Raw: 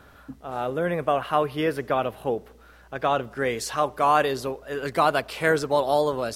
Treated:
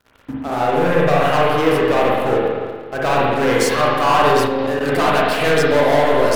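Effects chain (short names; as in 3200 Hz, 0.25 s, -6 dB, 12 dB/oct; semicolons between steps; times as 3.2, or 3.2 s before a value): sample leveller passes 5; spring tank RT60 1.7 s, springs 41/56 ms, chirp 55 ms, DRR -5 dB; 4.47–4.89 level quantiser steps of 10 dB; gain -9 dB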